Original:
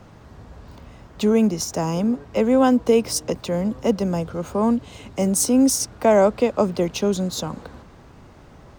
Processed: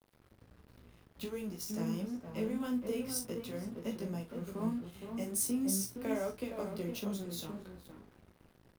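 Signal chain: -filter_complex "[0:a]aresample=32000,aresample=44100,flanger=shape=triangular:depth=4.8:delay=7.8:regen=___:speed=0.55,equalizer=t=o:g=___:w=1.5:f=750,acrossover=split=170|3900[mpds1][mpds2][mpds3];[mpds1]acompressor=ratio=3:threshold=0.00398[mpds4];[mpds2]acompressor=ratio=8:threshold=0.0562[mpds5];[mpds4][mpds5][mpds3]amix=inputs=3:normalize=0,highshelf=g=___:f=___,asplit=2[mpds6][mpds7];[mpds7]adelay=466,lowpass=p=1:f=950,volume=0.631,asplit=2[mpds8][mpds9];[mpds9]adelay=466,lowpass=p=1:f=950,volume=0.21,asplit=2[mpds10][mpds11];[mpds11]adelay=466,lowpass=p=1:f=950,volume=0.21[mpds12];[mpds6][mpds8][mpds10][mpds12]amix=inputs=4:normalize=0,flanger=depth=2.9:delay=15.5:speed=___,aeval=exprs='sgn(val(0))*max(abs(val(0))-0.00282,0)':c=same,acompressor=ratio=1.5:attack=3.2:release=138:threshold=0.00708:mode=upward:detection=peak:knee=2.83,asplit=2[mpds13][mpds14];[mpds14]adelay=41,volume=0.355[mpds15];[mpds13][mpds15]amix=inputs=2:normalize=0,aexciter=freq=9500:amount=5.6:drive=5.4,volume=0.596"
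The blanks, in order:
-55, -11, -10.5, 7600, 1.4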